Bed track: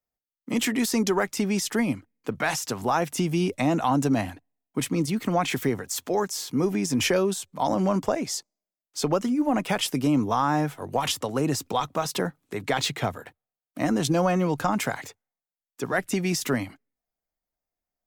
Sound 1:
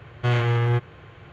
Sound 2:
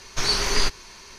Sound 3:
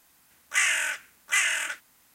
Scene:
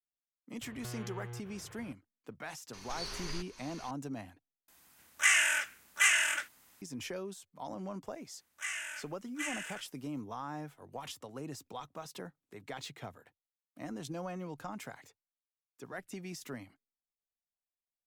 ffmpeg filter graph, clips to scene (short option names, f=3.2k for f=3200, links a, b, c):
-filter_complex "[3:a]asplit=2[a][b];[0:a]volume=-18dB[c];[1:a]acompressor=threshold=-33dB:ratio=6:attack=3.2:release=140:knee=1:detection=peak[d];[2:a]acompressor=threshold=-39dB:ratio=2:attack=1.4:release=292:knee=1:detection=peak[e];[c]asplit=2[f][g];[f]atrim=end=4.684[h];[a]atrim=end=2.14,asetpts=PTS-STARTPTS,volume=-2dB[i];[g]atrim=start=6.816[j];[d]atrim=end=1.32,asetpts=PTS-STARTPTS,volume=-9dB,afade=t=in:d=0.004:c=hsin,afade=t=out:st=1.316:d=0.004:c=hsin,adelay=610[k];[e]atrim=end=1.18,asetpts=PTS-STARTPTS,volume=-6.5dB,afade=t=in:d=0.004:c=hsin,afade=t=out:st=1.176:d=0.004:c=hsin,adelay=2730[l];[b]atrim=end=2.14,asetpts=PTS-STARTPTS,volume=-15dB,afade=t=in:d=0.004:c=hsin,afade=t=out:st=2.136:d=0.004:c=hsin,adelay=8070[m];[h][i]acrossfade=d=0.004:c1=hsin:c2=hsin[n];[n][j]acrossfade=d=0.004:c1=hsin:c2=hsin[o];[o][k][l][m]amix=inputs=4:normalize=0"